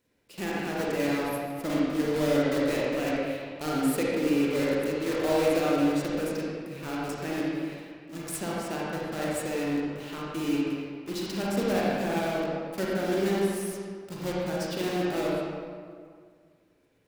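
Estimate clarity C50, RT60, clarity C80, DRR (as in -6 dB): -4.0 dB, 2.0 s, -1.5 dB, -6.0 dB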